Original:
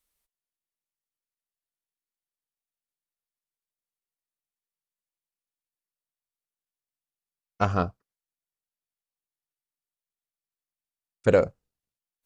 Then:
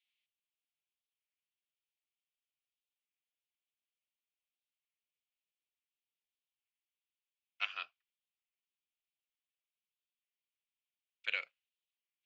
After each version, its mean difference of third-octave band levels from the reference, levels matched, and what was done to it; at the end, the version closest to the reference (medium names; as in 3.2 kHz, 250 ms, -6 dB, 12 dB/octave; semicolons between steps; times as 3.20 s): 14.0 dB: Butterworth band-pass 2.8 kHz, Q 2.2; warped record 33 1/3 rpm, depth 160 cents; trim +5.5 dB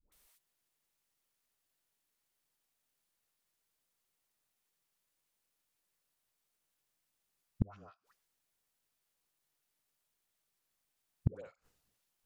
10.5 dB: phase dispersion highs, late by 121 ms, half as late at 650 Hz; inverted gate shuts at -27 dBFS, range -41 dB; trim +10.5 dB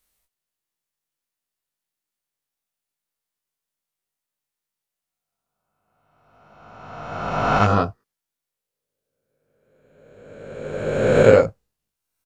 2.5 dB: reverse spectral sustain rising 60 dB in 1.84 s; doubling 19 ms -3 dB; trim +2.5 dB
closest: third